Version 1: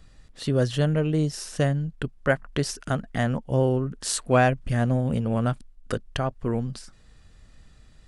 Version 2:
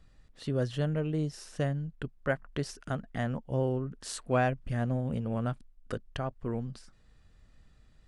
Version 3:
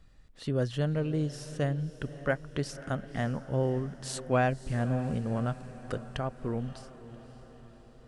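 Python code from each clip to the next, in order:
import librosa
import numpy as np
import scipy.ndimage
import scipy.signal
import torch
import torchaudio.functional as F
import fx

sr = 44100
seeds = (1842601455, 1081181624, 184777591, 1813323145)

y1 = fx.high_shelf(x, sr, hz=4400.0, db=-6.5)
y1 = F.gain(torch.from_numpy(y1), -7.5).numpy()
y2 = fx.echo_diffused(y1, sr, ms=565, feedback_pct=56, wet_db=-15.0)
y2 = F.gain(torch.from_numpy(y2), 1.0).numpy()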